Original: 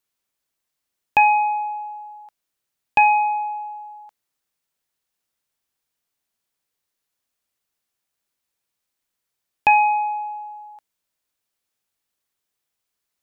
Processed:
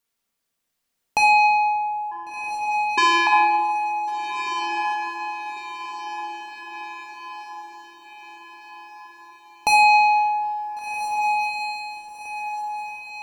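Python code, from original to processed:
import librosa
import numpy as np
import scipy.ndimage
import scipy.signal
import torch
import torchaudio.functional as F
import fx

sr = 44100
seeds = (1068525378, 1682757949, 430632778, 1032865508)

y = fx.rider(x, sr, range_db=10, speed_s=2.0)
y = 10.0 ** (-17.5 / 20.0) * np.tanh(y / 10.0 ** (-17.5 / 20.0))
y = fx.vocoder(y, sr, bands=8, carrier='square', carrier_hz=340.0, at=(2.11, 3.27))
y = fx.echo_diffused(y, sr, ms=1489, feedback_pct=50, wet_db=-7.5)
y = fx.room_shoebox(y, sr, seeds[0], volume_m3=1400.0, walls='mixed', distance_m=1.7)
y = y * librosa.db_to_amplitude(3.0)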